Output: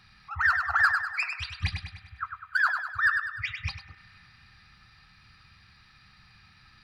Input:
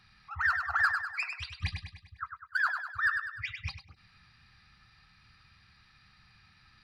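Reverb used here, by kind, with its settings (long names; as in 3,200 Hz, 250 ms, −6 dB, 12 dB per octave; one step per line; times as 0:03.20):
spring reverb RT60 3.2 s, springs 31 ms, chirp 65 ms, DRR 18 dB
level +4.5 dB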